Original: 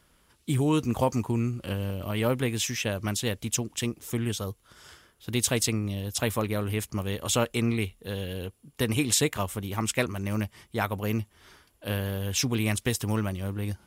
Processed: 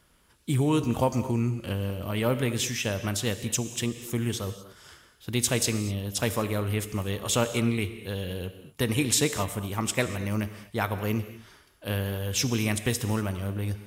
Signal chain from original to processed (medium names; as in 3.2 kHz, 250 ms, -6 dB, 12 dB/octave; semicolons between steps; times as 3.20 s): gated-style reverb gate 270 ms flat, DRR 10 dB